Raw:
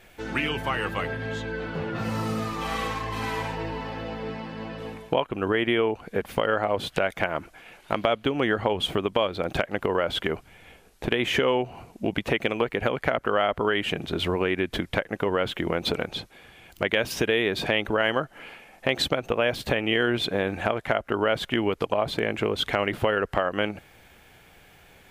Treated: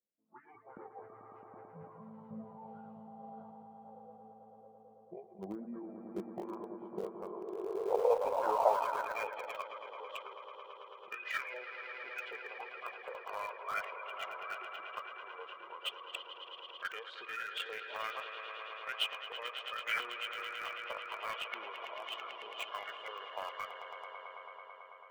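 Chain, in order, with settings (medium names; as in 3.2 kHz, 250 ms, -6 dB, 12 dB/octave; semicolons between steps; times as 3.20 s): spectral noise reduction 30 dB; LFO band-pass saw up 1.3 Hz 700–2200 Hz; on a send: echo with a slow build-up 110 ms, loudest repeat 5, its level -10 dB; on the sum: band-pass sweep 210 Hz -> 4.2 kHz, 7.21–9.68 s; in parallel at -11 dB: small samples zeroed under -39 dBFS; on the sum: formant shift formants -5 st; tape noise reduction on one side only decoder only; trim +6 dB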